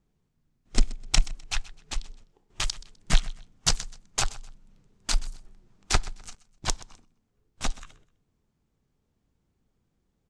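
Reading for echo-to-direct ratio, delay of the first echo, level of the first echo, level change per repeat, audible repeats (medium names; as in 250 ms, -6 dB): -18.5 dB, 127 ms, -19.0 dB, -11.0 dB, 2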